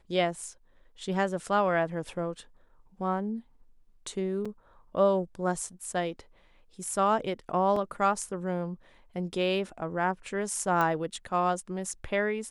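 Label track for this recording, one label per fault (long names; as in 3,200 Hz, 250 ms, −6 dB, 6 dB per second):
4.450000	4.460000	drop-out 5.3 ms
7.760000	7.760000	drop-out 4 ms
10.810000	10.810000	click −16 dBFS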